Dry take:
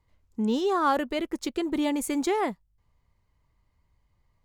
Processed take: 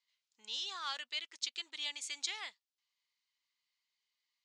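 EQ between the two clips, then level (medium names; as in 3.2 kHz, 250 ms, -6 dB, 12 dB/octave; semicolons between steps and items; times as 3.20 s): Butterworth band-pass 5.4 kHz, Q 1; distance through air 110 m; +7.0 dB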